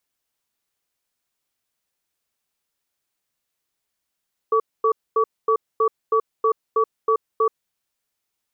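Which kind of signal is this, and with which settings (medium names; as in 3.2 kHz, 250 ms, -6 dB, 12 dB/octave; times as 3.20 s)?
cadence 444 Hz, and 1.14 kHz, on 0.08 s, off 0.24 s, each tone -17.5 dBFS 2.97 s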